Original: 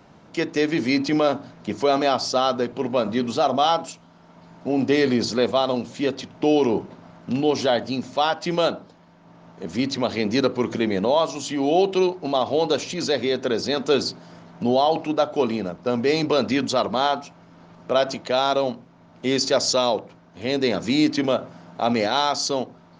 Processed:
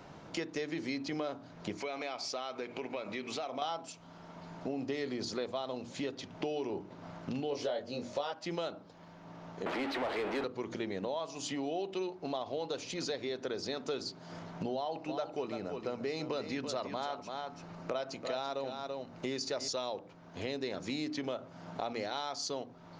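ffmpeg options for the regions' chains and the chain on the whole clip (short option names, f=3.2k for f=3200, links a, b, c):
-filter_complex "[0:a]asettb=1/sr,asplit=3[a][b][c];[a]atrim=end=1.774[d];[b]atrim=start=1.77:end=3.62,asetpts=PTS-STARTPTS,afade=t=in:d=0.004:c=qsin,afade=t=out:st=1.846:d=0.004:c=qsin,highpass=f=270:p=1,equalizer=f=2.3k:w=5.5:g=15,acompressor=threshold=-32dB:ratio=2:attack=3.2:release=140:knee=1:detection=peak[e];[c]atrim=start=3.616[f];[d][e]acrossfade=d=0.004:c1=hsin:c2=qsin[g];[g][f]acrossfade=d=0.004:c1=qsin:c2=hsin,asettb=1/sr,asplit=3[h][i][j];[h]atrim=end=7.504[k];[i]atrim=start=7.5:end=8.32,asetpts=PTS-STARTPTS,afade=t=in:d=0.004:c=qsin,afade=t=out:st=0.816:d=0.004:c=qsin,equalizer=f=520:t=o:w=0.33:g=11.5,asplit=2[l][m];[m]adelay=21,volume=-3.5dB[n];[l][n]amix=inputs=2:normalize=0,atrim=end_sample=36162[o];[j]atrim=start=8.316[p];[k][o]acrossfade=d=0.004:c1=hsin:c2=qsin[q];[q][p]acrossfade=d=0.004:c1=qsin:c2=hsin,asettb=1/sr,asplit=3[r][s][t];[r]atrim=end=9.664[u];[s]atrim=start=9.66:end=10.44,asetpts=PTS-STARTPTS,afade=t=in:d=0.004:c=qsin,afade=t=out:st=0.776:d=0.004:c=qsin,aeval=exprs='val(0)+0.5*0.0708*sgn(val(0))':c=same,acrossover=split=250 3800:gain=0.0891 1 0.0794[v][w][x];[v][w][x]amix=inputs=3:normalize=0,asplit=2[y][z];[z]highpass=f=720:p=1,volume=22dB,asoftclip=type=tanh:threshold=-8.5dB[aa];[y][aa]amix=inputs=2:normalize=0,lowpass=f=1.6k:p=1,volume=-6dB[ab];[t]atrim=start=10.436[ac];[u][ab]acrossfade=d=0.004:c1=hsin:c2=qsin[ad];[ad][ac]acrossfade=d=0.004:c1=qsin:c2=hsin,asettb=1/sr,asplit=3[ae][af][ag];[ae]atrim=end=14.754[ah];[af]atrim=start=14.75:end=19.68,asetpts=PTS-STARTPTS,afade=t=in:d=0.004:c=qsin,afade=t=out:st=4.926:d=0.004:c=qsin,bandreject=f=3.3k:w=13,aecho=1:1:336:0.316,atrim=end_sample=217413[ai];[ag]atrim=start=19.676[aj];[ah][ai]acrossfade=d=0.004:c1=hsin:c2=qsin[ak];[ak][aj]acrossfade=d=0.004:c1=qsin:c2=hsin,equalizer=f=220:t=o:w=0.23:g=-5.5,bandreject=f=60:t=h:w=6,bandreject=f=120:t=h:w=6,bandreject=f=180:t=h:w=6,bandreject=f=240:t=h:w=6,bandreject=f=300:t=h:w=6,acompressor=threshold=-37dB:ratio=4"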